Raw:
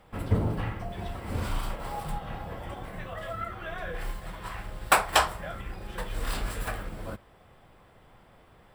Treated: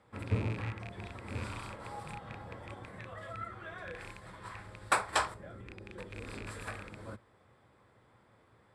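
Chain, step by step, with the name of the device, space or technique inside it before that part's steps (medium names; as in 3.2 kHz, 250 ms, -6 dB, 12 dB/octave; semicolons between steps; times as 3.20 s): 5.34–6.47 s: FFT filter 140 Hz 0 dB, 380 Hz +4 dB, 940 Hz -8 dB; car door speaker with a rattle (rattle on loud lows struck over -33 dBFS, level -24 dBFS; cabinet simulation 93–9500 Hz, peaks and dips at 110 Hz +5 dB, 160 Hz -6 dB, 710 Hz -6 dB, 2.9 kHz -8 dB, 5.8 kHz -4 dB); trim -6 dB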